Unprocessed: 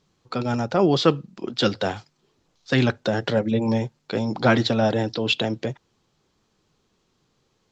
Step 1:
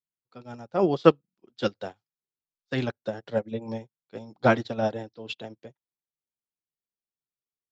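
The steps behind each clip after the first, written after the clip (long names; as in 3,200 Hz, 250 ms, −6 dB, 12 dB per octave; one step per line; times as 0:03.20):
dynamic equaliser 590 Hz, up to +4 dB, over −28 dBFS, Q 0.86
expander for the loud parts 2.5 to 1, over −36 dBFS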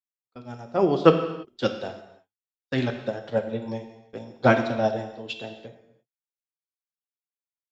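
noise gate with hold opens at −42 dBFS
on a send at −6 dB: convolution reverb, pre-delay 3 ms
on the sum: level +1.5 dB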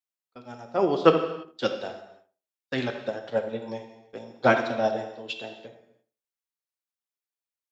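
low-shelf EQ 190 Hz −11.5 dB
tape delay 78 ms, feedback 26%, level −10.5 dB, low-pass 1,300 Hz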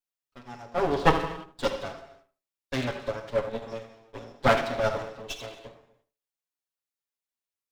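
lower of the sound and its delayed copy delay 7.2 ms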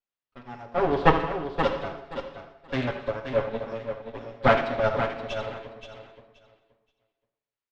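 low-pass filter 3,100 Hz 12 dB per octave
on a send: repeating echo 526 ms, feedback 19%, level −8.5 dB
on the sum: level +2 dB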